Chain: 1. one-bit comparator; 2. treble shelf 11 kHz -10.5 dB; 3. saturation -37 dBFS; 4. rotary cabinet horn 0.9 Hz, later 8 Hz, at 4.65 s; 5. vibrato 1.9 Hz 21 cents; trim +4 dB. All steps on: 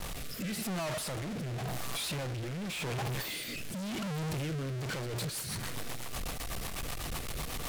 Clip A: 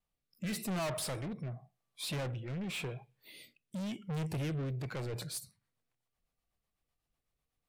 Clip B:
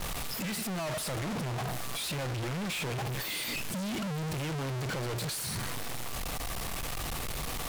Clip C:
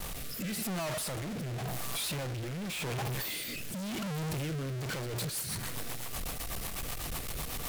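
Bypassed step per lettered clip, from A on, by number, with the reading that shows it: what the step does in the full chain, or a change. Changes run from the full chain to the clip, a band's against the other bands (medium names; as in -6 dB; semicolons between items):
1, crest factor change +2.0 dB; 4, crest factor change -9.5 dB; 2, 8 kHz band +2.0 dB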